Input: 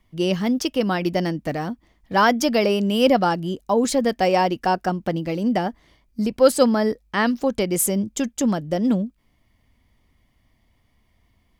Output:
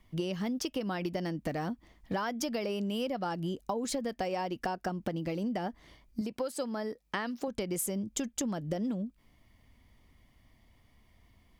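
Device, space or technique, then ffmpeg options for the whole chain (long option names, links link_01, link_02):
serial compression, leveller first: -filter_complex "[0:a]acompressor=threshold=-22dB:ratio=2.5,acompressor=threshold=-31dB:ratio=6,asettb=1/sr,asplit=3[link_01][link_02][link_03];[link_01]atrim=end=6.214[link_04];[link_02]atrim=start=6.21:end=7.48,asetpts=PTS-STARTPTS,afade=type=in:duration=0.004:curve=qsin,afade=type=out:start_time=1.266:duration=0.004:curve=qsin,highpass=frequency=200:poles=1[link_05];[link_03]atrim=start=7.476[link_06];[link_04][link_05]acrossfade=duration=0.004:curve1=hsin:curve2=qsin[link_07];[link_07][link_06]acrossfade=duration=0.004:curve1=qsin:curve2=hsin"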